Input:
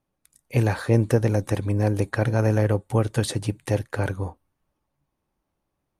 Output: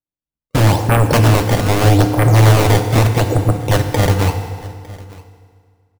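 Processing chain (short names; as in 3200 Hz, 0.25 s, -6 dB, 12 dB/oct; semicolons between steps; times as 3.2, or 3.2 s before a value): steep low-pass 970 Hz 72 dB/oct; gate -37 dBFS, range -37 dB; in parallel at -3.5 dB: sine folder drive 16 dB, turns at -6 dBFS; on the sum: decimation with a swept rate 19×, swing 160% 0.8 Hz; echo 0.905 s -22 dB; on a send at -6 dB: reverb RT60 2.0 s, pre-delay 3 ms; on the sum: gain -1 dB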